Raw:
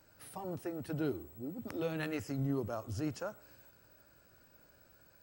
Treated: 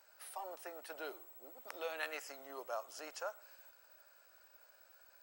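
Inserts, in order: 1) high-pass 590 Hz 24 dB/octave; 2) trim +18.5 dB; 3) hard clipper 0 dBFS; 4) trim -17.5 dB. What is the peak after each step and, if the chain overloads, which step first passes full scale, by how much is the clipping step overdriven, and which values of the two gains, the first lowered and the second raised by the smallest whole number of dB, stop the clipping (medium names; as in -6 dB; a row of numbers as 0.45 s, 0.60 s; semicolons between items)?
-24.0 dBFS, -5.5 dBFS, -5.5 dBFS, -23.0 dBFS; nothing clips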